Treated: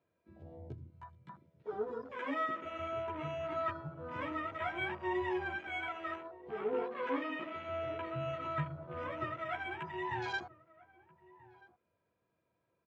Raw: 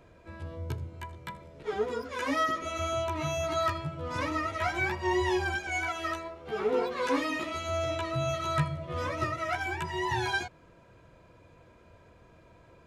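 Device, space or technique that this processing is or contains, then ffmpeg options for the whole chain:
over-cleaned archive recording: -filter_complex "[0:a]highpass=120,lowpass=5000,afwtdn=0.0126,asettb=1/sr,asplit=3[link_01][link_02][link_03];[link_01]atrim=end=6.824[link_04];[link_02]atrim=start=6.82:end=8.06,asetpts=PTS-STARTPTS,afade=type=in:duration=0.004:curve=qsin,afade=type=out:start_time=1.236:duration=0.004:curve=qsin,lowpass=6200[link_05];[link_03]atrim=start=8.056[link_06];[link_04][link_05]acrossfade=duration=0.004:curve1=hsin:curve2=qsin[link_07];[link_07][link_06]acrossfade=duration=0.004:curve1=qsin:curve2=hsin,asplit=2[link_08][link_09];[link_09]adelay=1283,volume=-20dB,highshelf=frequency=4000:gain=-28.9[link_10];[link_08][link_10]amix=inputs=2:normalize=0,volume=-7dB"

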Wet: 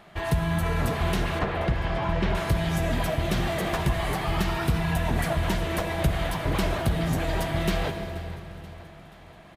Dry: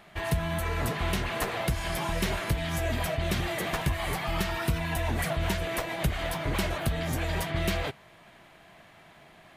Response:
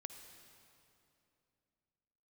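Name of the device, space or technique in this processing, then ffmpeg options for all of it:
swimming-pool hall: -filter_complex "[1:a]atrim=start_sample=2205[link_01];[0:a][link_01]afir=irnorm=-1:irlink=0,highshelf=frequency=5100:gain=-6,asettb=1/sr,asplit=3[link_02][link_03][link_04];[link_02]atrim=end=1.394[link_05];[link_03]atrim=start=1.39:end=2.35,asetpts=PTS-STARTPTS,afade=type=in:duration=0.004:curve=qsin,afade=type=out:start_time=0.956:duration=0.004:curve=qsin,lowpass=3000[link_06];[link_04]atrim=start=2.346[link_07];[link_05][link_06]acrossfade=duration=0.004:curve1=hsin:curve2=qsin[link_08];[link_08][link_07]acrossfade=duration=0.004:curve1=qsin:curve2=hsin,equalizer=frequency=2200:width_type=o:width=0.92:gain=-3.5,aecho=1:1:481|962|1443|1924|2405:0.112|0.0628|0.0352|0.0197|0.011,volume=8.5dB"

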